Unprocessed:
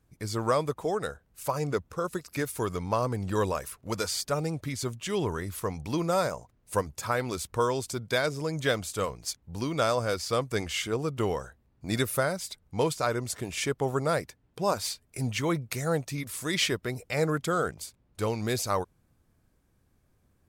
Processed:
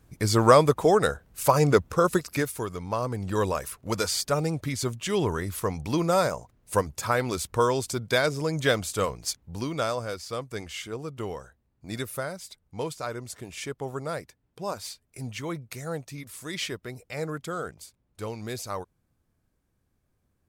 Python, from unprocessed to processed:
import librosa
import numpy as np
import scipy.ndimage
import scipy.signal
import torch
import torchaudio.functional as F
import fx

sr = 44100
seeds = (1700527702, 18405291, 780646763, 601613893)

y = fx.gain(x, sr, db=fx.line((2.18, 9.5), (2.69, -3.0), (3.74, 3.5), (9.31, 3.5), (10.2, -5.5)))